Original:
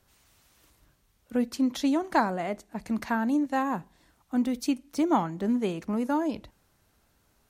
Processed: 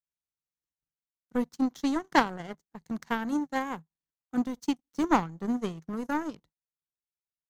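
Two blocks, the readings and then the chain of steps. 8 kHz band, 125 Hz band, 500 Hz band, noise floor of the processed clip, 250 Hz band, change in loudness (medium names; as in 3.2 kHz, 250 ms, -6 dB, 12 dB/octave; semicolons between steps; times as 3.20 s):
-3.5 dB, -3.5 dB, -4.0 dB, under -85 dBFS, -3.0 dB, -2.0 dB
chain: power-law waveshaper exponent 2; graphic EQ with 31 bands 160 Hz +10 dB, 630 Hz -7 dB, 2.5 kHz -7 dB, 6.3 kHz +5 dB, 10 kHz -5 dB; trim +7 dB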